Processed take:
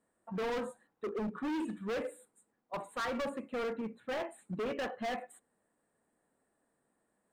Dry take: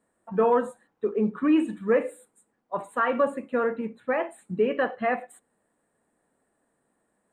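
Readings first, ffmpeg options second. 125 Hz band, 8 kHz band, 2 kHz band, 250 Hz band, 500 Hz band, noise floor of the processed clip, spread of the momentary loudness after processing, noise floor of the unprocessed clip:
-7.5 dB, no reading, -10.0 dB, -11.5 dB, -12.5 dB, -80 dBFS, 8 LU, -75 dBFS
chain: -af "asoftclip=type=hard:threshold=0.0422,volume=0.531"

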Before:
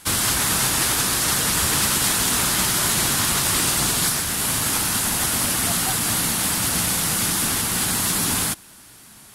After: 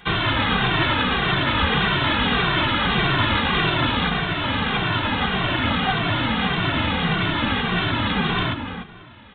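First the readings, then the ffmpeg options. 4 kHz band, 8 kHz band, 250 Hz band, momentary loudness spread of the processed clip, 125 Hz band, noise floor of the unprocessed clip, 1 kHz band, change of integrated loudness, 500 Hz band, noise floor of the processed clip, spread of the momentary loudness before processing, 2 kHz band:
+0.5 dB, under -40 dB, +5.0 dB, 3 LU, +5.5 dB, -46 dBFS, +5.0 dB, -1.5 dB, +5.0 dB, -42 dBFS, 2 LU, +5.0 dB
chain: -filter_complex "[0:a]asplit=2[s0][s1];[s1]adelay=295,lowpass=f=2000:p=1,volume=0.422,asplit=2[s2][s3];[s3]adelay=295,lowpass=f=2000:p=1,volume=0.22,asplit=2[s4][s5];[s5]adelay=295,lowpass=f=2000:p=1,volume=0.22[s6];[s2][s4][s6]amix=inputs=3:normalize=0[s7];[s0][s7]amix=inputs=2:normalize=0,aresample=8000,aresample=44100,asplit=2[s8][s9];[s9]adelay=2.1,afreqshift=-1.7[s10];[s8][s10]amix=inputs=2:normalize=1,volume=2.37"

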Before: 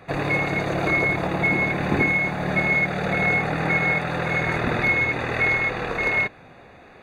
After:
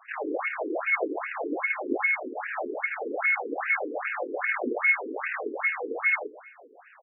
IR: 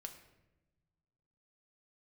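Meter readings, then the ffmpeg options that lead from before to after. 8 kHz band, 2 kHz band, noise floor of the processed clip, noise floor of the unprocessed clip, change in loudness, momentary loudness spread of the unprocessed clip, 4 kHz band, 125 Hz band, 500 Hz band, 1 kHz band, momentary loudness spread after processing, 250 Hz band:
no reading, -6.0 dB, -54 dBFS, -48 dBFS, -6.5 dB, 4 LU, under -15 dB, under -40 dB, -5.0 dB, -6.0 dB, 8 LU, -9.0 dB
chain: -filter_complex "[0:a]aecho=1:1:146|292:0.237|0.0403,asplit=2[s0][s1];[1:a]atrim=start_sample=2205,adelay=70[s2];[s1][s2]afir=irnorm=-1:irlink=0,volume=0.282[s3];[s0][s3]amix=inputs=2:normalize=0,afftfilt=real='re*between(b*sr/1024,320*pow(2100/320,0.5+0.5*sin(2*PI*2.5*pts/sr))/1.41,320*pow(2100/320,0.5+0.5*sin(2*PI*2.5*pts/sr))*1.41)':imag='im*between(b*sr/1024,320*pow(2100/320,0.5+0.5*sin(2*PI*2.5*pts/sr))/1.41,320*pow(2100/320,0.5+0.5*sin(2*PI*2.5*pts/sr))*1.41)':win_size=1024:overlap=0.75"

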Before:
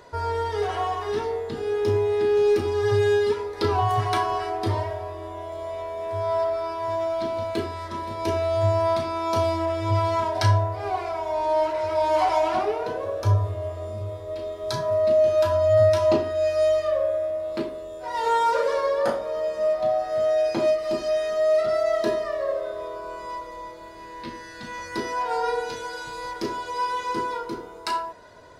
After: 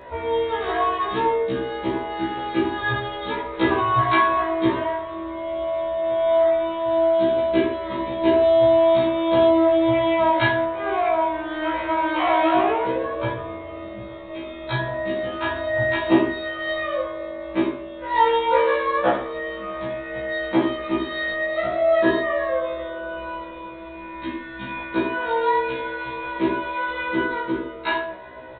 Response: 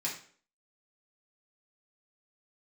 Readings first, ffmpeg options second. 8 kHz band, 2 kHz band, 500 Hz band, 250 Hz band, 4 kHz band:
no reading, +9.5 dB, +1.0 dB, +10.5 dB, +3.5 dB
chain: -filter_complex "[0:a]asplit=2[s0][s1];[1:a]atrim=start_sample=2205,adelay=6[s2];[s1][s2]afir=irnorm=-1:irlink=0,volume=0.668[s3];[s0][s3]amix=inputs=2:normalize=0,aresample=8000,aresample=44100,afftfilt=real='re*1.73*eq(mod(b,3),0)':imag='im*1.73*eq(mod(b,3),0)':win_size=2048:overlap=0.75,volume=2.37"

